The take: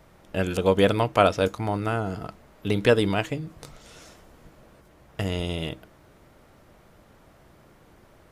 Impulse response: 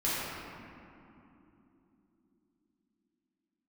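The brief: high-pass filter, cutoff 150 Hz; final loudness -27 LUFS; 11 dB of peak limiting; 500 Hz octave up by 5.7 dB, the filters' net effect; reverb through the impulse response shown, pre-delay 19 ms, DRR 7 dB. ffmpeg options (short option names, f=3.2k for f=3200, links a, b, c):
-filter_complex "[0:a]highpass=150,equalizer=f=500:t=o:g=6.5,alimiter=limit=-11.5dB:level=0:latency=1,asplit=2[a][b];[1:a]atrim=start_sample=2205,adelay=19[c];[b][c]afir=irnorm=-1:irlink=0,volume=-17dB[d];[a][d]amix=inputs=2:normalize=0,volume=-1.5dB"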